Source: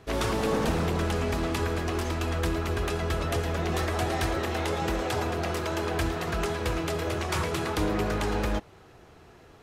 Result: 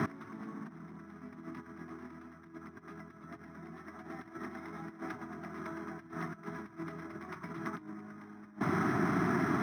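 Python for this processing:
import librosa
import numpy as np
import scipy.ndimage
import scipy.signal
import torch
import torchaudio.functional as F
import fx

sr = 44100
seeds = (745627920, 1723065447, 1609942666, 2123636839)

y = fx.tilt_eq(x, sr, slope=-3.0)
y = fx.over_compress(y, sr, threshold_db=-41.0, ratio=-1.0)
y = fx.cabinet(y, sr, low_hz=200.0, low_slope=24, high_hz=5200.0, hz=(510.0, 850.0, 2100.0), db=(-8, -10, 7))
y = fx.fixed_phaser(y, sr, hz=1200.0, stages=4)
y = np.interp(np.arange(len(y)), np.arange(len(y))[::6], y[::6])
y = F.gain(torch.from_numpy(y), 11.0).numpy()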